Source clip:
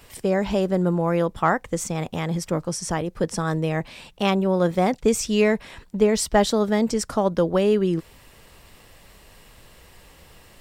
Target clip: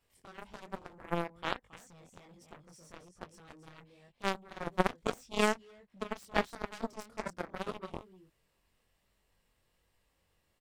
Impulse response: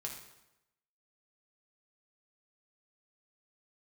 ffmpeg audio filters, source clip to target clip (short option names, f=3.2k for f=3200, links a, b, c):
-af "aecho=1:1:276:0.376,flanger=delay=20:depth=4:speed=1.2,aeval=exprs='0.422*(cos(1*acos(clip(val(0)/0.422,-1,1)))-cos(1*PI/2))+0.15*(cos(3*acos(clip(val(0)/0.422,-1,1)))-cos(3*PI/2))':c=same"